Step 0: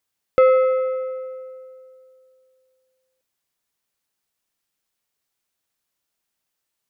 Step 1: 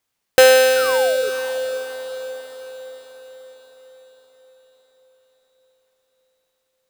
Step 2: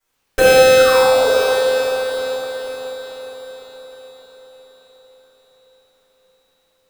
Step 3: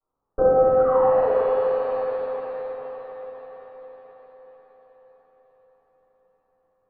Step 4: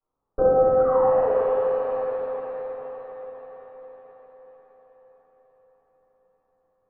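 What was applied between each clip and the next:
each half-wave held at its own peak; sound drawn into the spectrogram fall, 0:00.74–0:01.30, 400–1,600 Hz −28 dBFS; feedback delay with all-pass diffusion 515 ms, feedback 54%, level −12 dB
downward compressor 6 to 1, threshold −19 dBFS, peak gain reduction 10.5 dB; convolution reverb RT60 2.2 s, pre-delay 3 ms, DRR −19 dB; level −11 dB
Butterworth low-pass 1,300 Hz 72 dB per octave; reverb with rising layers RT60 2.9 s, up +7 semitones, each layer −8 dB, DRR 5.5 dB; level −6 dB
high-frequency loss of the air 340 metres

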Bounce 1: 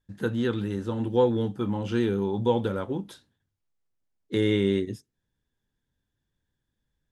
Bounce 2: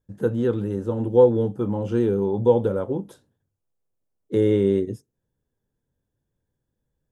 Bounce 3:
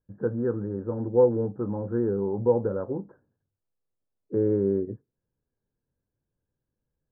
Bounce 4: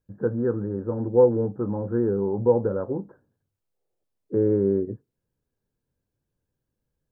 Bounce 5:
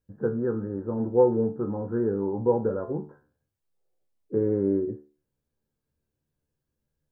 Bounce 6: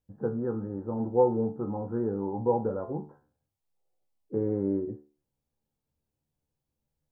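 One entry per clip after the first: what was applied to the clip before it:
octave-band graphic EQ 125/500/2,000/4,000 Hz +4/+8/−6/−9 dB
Chebyshev low-pass filter 1,700 Hz, order 6; level −4.5 dB
gain on a spectral selection 0:03.74–0:04.03, 320–900 Hz +10 dB; level +2.5 dB
tuned comb filter 74 Hz, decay 0.37 s, harmonics all, mix 80%; level +6 dB
thirty-one-band graphic EQ 400 Hz −4 dB, 800 Hz +7 dB, 1,600 Hz −7 dB; level −2.5 dB

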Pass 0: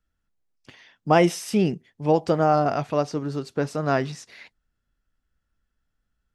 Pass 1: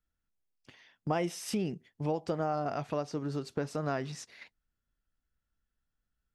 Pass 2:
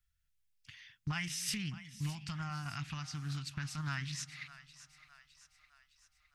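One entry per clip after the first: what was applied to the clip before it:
noise gate −43 dBFS, range −8 dB; downward compressor 3 to 1, threshold −33 dBFS, peak gain reduction 15 dB
Chebyshev band-stop filter 110–2,000 Hz, order 2; echo with a time of its own for lows and highs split 500 Hz, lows 207 ms, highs 611 ms, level −15 dB; highs frequency-modulated by the lows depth 0.33 ms; level +5 dB

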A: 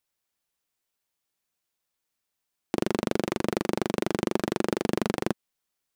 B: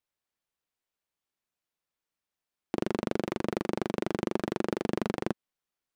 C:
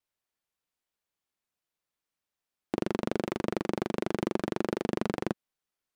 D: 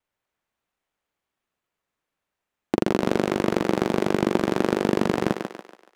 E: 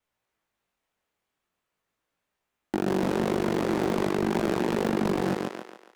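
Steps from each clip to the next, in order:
high-shelf EQ 4,700 Hz −8.5 dB; level −3.5 dB
pitch vibrato 1.3 Hz 30 cents
running median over 9 samples; on a send: feedback echo with a high-pass in the loop 142 ms, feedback 46%, high-pass 310 Hz, level −5 dB; on the sum: level +8 dB
chorus effect 0.43 Hz, delay 17 ms, depth 7.1 ms; hard clipping −24 dBFS, distortion −6 dB; level +4.5 dB

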